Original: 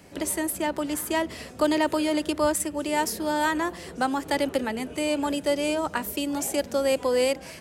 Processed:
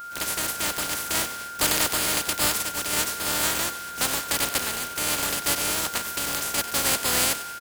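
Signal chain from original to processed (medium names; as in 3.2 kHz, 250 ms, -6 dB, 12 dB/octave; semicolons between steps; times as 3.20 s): spectral contrast reduction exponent 0.18; whistle 1.4 kHz -35 dBFS; frequency-shifting echo 95 ms, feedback 37%, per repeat +140 Hz, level -13 dB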